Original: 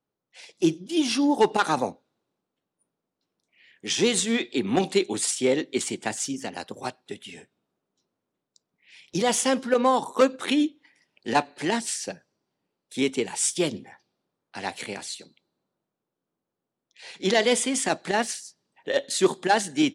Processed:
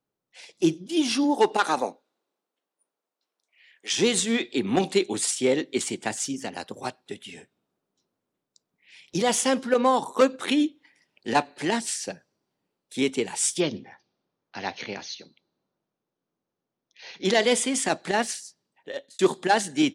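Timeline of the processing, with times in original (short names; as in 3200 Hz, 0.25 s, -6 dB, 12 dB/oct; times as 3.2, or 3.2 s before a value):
1.23–3.92 HPF 230 Hz -> 690 Hz
13.6–17.25 brick-wall FIR low-pass 6700 Hz
18.44–19.19 fade out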